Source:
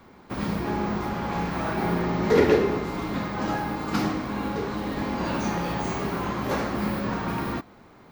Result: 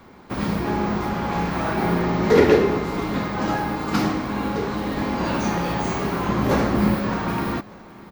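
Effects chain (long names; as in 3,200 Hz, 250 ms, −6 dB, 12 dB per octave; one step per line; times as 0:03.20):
0:06.29–0:06.95: low-shelf EQ 440 Hz +6 dB
repeating echo 603 ms, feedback 43%, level −22 dB
level +4 dB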